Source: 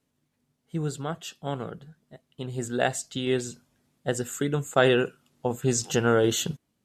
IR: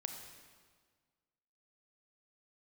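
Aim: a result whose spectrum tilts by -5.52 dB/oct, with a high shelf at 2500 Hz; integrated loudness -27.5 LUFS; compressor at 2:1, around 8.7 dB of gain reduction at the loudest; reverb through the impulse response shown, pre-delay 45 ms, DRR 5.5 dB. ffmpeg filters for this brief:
-filter_complex "[0:a]highshelf=f=2.5k:g=-8,acompressor=threshold=-33dB:ratio=2,asplit=2[a][b];[1:a]atrim=start_sample=2205,adelay=45[c];[b][c]afir=irnorm=-1:irlink=0,volume=-4dB[d];[a][d]amix=inputs=2:normalize=0,volume=7dB"

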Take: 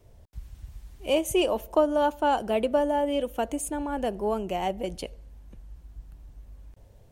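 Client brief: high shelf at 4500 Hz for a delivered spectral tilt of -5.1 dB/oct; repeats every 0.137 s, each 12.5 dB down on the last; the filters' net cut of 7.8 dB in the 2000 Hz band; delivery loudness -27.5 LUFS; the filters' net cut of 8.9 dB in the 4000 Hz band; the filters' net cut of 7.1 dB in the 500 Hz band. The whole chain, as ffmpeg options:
-af "equalizer=f=500:t=o:g=-8.5,equalizer=f=2k:t=o:g=-8,equalizer=f=4k:t=o:g=-5.5,highshelf=f=4.5k:g=-7,aecho=1:1:137|274|411:0.237|0.0569|0.0137,volume=4.5dB"

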